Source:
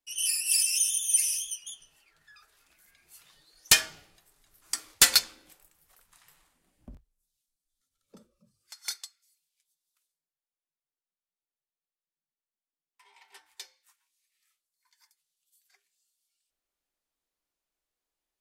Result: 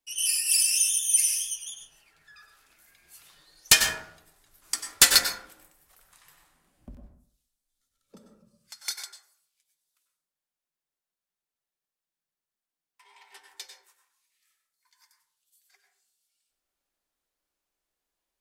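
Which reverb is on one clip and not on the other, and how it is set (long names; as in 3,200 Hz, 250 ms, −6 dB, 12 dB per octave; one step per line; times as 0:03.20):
dense smooth reverb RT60 0.57 s, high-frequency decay 0.35×, pre-delay 85 ms, DRR 3.5 dB
level +2 dB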